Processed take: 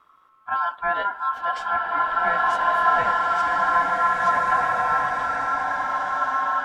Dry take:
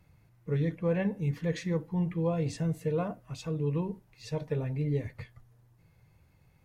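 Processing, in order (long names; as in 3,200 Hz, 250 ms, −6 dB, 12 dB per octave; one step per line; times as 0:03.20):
ring modulation 1,200 Hz
high-shelf EQ 4,000 Hz −9 dB
slow-attack reverb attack 1,980 ms, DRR −4.5 dB
level +8 dB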